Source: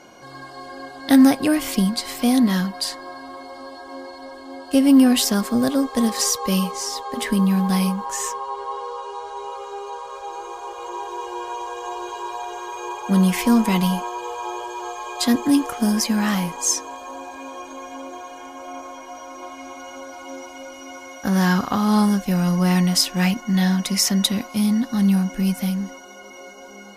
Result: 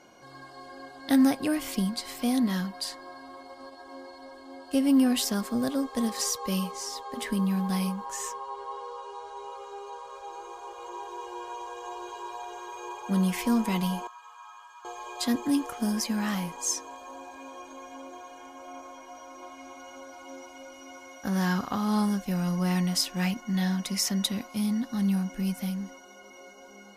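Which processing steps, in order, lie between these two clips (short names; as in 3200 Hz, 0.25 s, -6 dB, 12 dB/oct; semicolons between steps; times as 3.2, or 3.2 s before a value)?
3.38–3.85 transient shaper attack +6 dB, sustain -10 dB; 14.07–14.85 ladder high-pass 1100 Hz, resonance 60%; gain -8.5 dB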